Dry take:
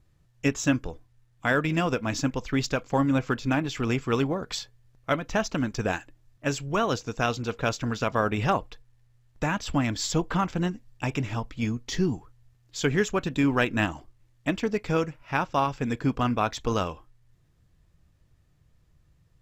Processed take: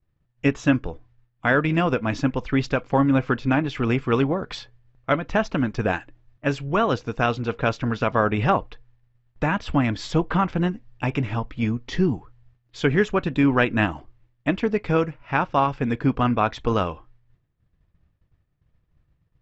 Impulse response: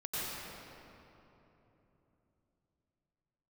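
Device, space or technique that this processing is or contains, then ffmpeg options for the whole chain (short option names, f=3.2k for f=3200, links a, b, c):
hearing-loss simulation: -af "lowpass=3k,agate=range=-33dB:threshold=-54dB:ratio=3:detection=peak,volume=4.5dB"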